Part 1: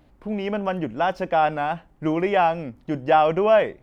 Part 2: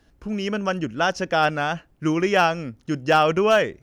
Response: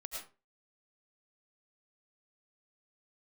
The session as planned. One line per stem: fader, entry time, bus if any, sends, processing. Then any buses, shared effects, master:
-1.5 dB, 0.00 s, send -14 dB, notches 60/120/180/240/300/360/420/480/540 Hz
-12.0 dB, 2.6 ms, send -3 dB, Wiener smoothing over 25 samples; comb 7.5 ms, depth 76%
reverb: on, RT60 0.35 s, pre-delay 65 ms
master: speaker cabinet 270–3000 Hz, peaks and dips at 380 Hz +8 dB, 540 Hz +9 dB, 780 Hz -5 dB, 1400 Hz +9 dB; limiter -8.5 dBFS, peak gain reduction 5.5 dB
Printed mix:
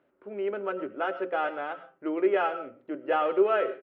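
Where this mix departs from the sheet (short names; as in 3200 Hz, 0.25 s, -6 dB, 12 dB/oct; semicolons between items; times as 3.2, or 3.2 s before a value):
stem 1 -1.5 dB -> -12.0 dB; stem 2 -12.0 dB -> -20.0 dB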